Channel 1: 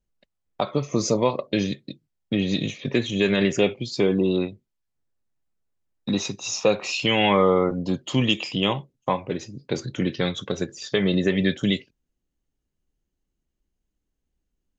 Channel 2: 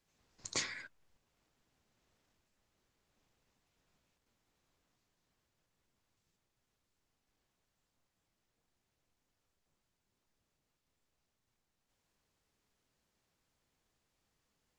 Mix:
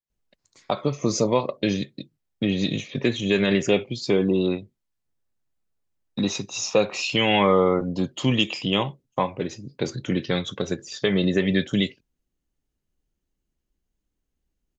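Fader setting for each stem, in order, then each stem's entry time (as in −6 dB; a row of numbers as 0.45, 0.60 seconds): 0.0, −19.5 decibels; 0.10, 0.00 seconds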